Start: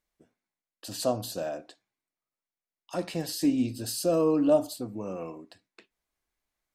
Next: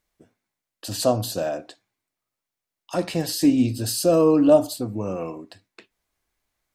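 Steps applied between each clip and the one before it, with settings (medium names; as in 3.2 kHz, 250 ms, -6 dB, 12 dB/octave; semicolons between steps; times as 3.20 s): peaking EQ 100 Hz +8.5 dB 0.36 oct; trim +7 dB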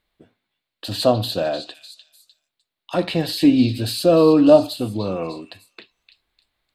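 resonant high shelf 4.8 kHz -7 dB, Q 3; repeats whose band climbs or falls 301 ms, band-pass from 3.4 kHz, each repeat 0.7 oct, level -8 dB; trim +3.5 dB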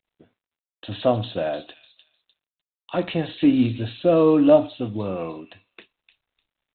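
trim -3 dB; G.726 32 kbps 8 kHz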